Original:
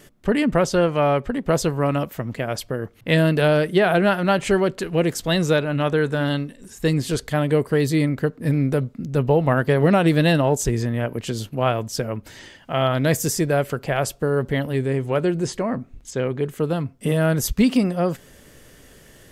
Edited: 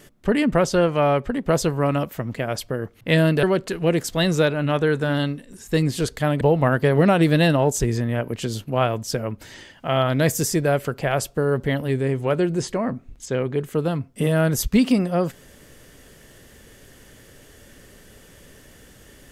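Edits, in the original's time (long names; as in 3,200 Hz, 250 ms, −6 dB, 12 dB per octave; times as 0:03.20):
0:03.43–0:04.54: remove
0:07.52–0:09.26: remove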